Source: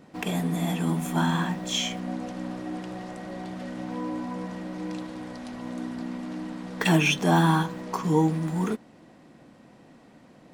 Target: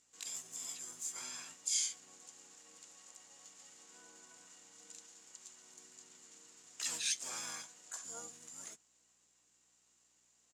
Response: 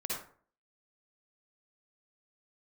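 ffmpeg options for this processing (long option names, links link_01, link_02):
-filter_complex "[0:a]asplit=3[link_01][link_02][link_03];[link_02]asetrate=29433,aresample=44100,atempo=1.49831,volume=-3dB[link_04];[link_03]asetrate=66075,aresample=44100,atempo=0.66742,volume=-1dB[link_05];[link_01][link_04][link_05]amix=inputs=3:normalize=0,aeval=exprs='val(0)+0.01*(sin(2*PI*60*n/s)+sin(2*PI*2*60*n/s)/2+sin(2*PI*3*60*n/s)/3+sin(2*PI*4*60*n/s)/4+sin(2*PI*5*60*n/s)/5)':channel_layout=same,bandpass=frequency=7100:width_type=q:width=7.4:csg=0,volume=5dB"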